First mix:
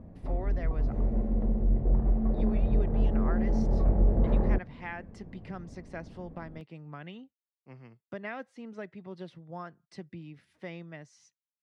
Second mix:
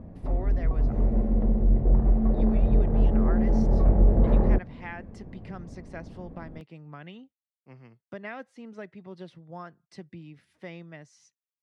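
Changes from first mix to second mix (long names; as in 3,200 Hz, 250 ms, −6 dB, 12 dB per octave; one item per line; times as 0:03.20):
speech: add high-shelf EQ 8,500 Hz +4.5 dB
background +4.5 dB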